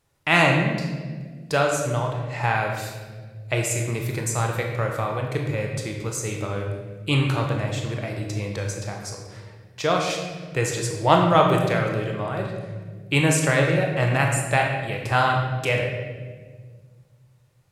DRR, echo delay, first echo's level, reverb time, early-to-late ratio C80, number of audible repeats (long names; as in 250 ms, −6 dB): 1.0 dB, no echo audible, no echo audible, 1.6 s, 5.0 dB, no echo audible